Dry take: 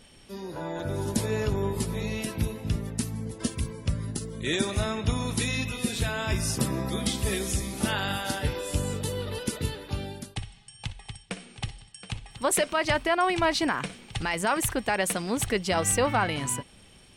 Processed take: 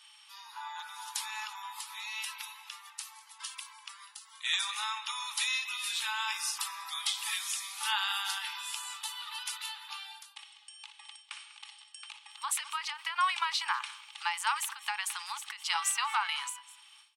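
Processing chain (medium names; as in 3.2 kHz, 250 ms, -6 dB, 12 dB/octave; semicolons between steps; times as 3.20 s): rippled Chebyshev high-pass 830 Hz, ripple 6 dB; delay 197 ms -22.5 dB; endings held to a fixed fall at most 130 dB/s; trim +2.5 dB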